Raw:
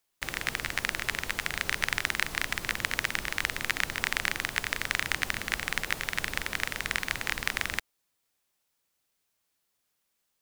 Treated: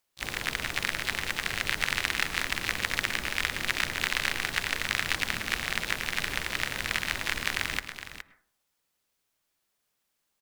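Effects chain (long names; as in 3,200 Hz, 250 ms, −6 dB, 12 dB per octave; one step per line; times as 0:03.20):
high-shelf EQ 4,200 Hz −2.5 dB
pitch-shifted copies added −3 semitones −15 dB, +5 semitones −6 dB, +12 semitones −11 dB
single-tap delay 417 ms −11 dB
convolution reverb RT60 0.45 s, pre-delay 98 ms, DRR 15.5 dB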